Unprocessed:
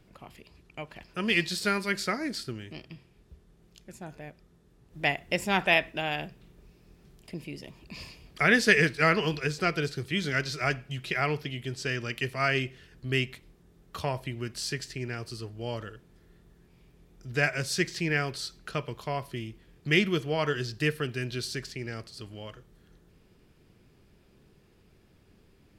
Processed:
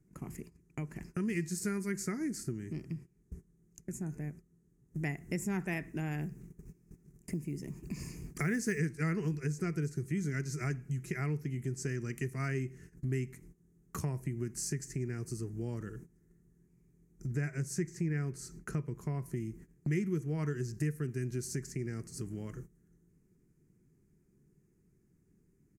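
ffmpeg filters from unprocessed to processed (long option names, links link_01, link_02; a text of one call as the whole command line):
ffmpeg -i in.wav -filter_complex "[0:a]asettb=1/sr,asplit=3[link_01][link_02][link_03];[link_01]atrim=end=6.214[link_04];[link_02]atrim=start=6.21:end=8.79,asetpts=PTS-STARTPTS,afade=type=in:duration=0.004:curve=qsin,afade=type=out:start_time=2.576:duration=0.004:curve=qsin,acrusher=bits=8:mode=log:mix=0:aa=0.000001[link_05];[link_03]atrim=start=8.786[link_06];[link_04][link_05]acrossfade=duration=0.004:curve1=hsin:curve2=qsin[link_07];[link_07][link_06]acrossfade=duration=0.004:curve1=qsin:curve2=hsin,asettb=1/sr,asplit=3[link_08][link_09][link_10];[link_08]atrim=end=17.274[link_11];[link_09]atrim=start=17.27:end=19.26,asetpts=PTS-STARTPTS,afade=type=in:duration=0.004:curve=qsin,afade=type=out:start_time=1.986:duration=0.004:curve=qsin,highshelf=frequency=2800:gain=-6[link_12];[link_10]atrim=start=19.256[link_13];[link_11][link_12]acrossfade=duration=0.004:curve1=hsin:curve2=qsin[link_14];[link_14][link_13]acrossfade=duration=0.004:curve1=qsin:curve2=hsin,agate=range=-19dB:threshold=-52dB:ratio=16:detection=peak,firequalizer=gain_entry='entry(100,0);entry(150,9);entry(220,4);entry(380,3);entry(560,-13);entry(830,-10);entry(2000,-5);entry(3400,-27);entry(6400,5);entry(15000,1)':delay=0.05:min_phase=1,acompressor=threshold=-47dB:ratio=2.5,volume=7.5dB" out.wav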